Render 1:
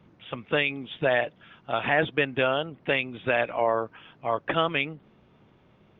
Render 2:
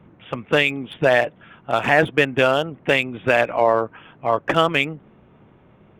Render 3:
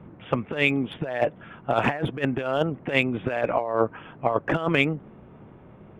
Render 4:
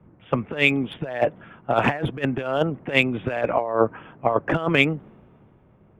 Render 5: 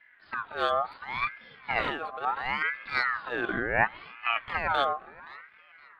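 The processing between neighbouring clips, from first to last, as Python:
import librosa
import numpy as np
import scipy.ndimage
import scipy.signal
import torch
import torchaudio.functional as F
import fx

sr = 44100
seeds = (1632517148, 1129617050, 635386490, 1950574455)

y1 = fx.wiener(x, sr, points=9)
y1 = y1 * 10.0 ** (7.5 / 20.0)
y2 = fx.high_shelf(y1, sr, hz=2600.0, db=-11.5)
y2 = fx.over_compress(y2, sr, threshold_db=-22.0, ratio=-0.5)
y3 = fx.band_widen(y2, sr, depth_pct=40)
y3 = y3 * 10.0 ** (2.0 / 20.0)
y4 = fx.echo_tape(y3, sr, ms=520, feedback_pct=46, wet_db=-18.0, lp_hz=1900.0, drive_db=6.0, wow_cents=19)
y4 = fx.hpss(y4, sr, part='percussive', gain_db=-17)
y4 = fx.ring_lfo(y4, sr, carrier_hz=1400.0, swing_pct=35, hz=0.71)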